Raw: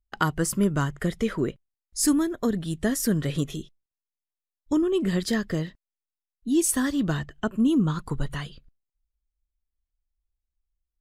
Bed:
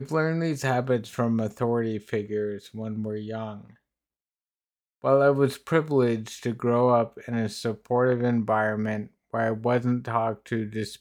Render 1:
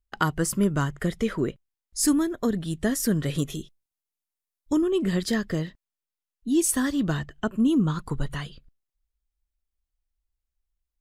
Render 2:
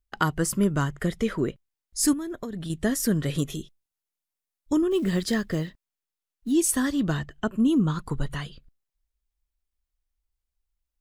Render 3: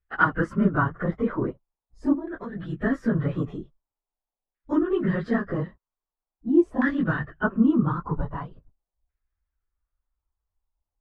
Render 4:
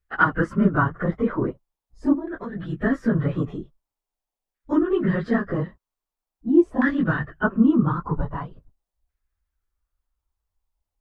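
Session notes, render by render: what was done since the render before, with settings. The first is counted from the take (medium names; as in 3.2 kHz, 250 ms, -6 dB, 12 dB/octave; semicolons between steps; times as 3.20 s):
3.26–4.88 s: peaking EQ 13 kHz +6 dB 1.3 oct
2.13–2.70 s: compression 12:1, threshold -29 dBFS; 4.91–6.52 s: short-mantissa float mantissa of 4-bit
phase randomisation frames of 50 ms; LFO low-pass saw down 0.44 Hz 730–1800 Hz
trim +2.5 dB; peak limiter -3 dBFS, peak gain reduction 1.5 dB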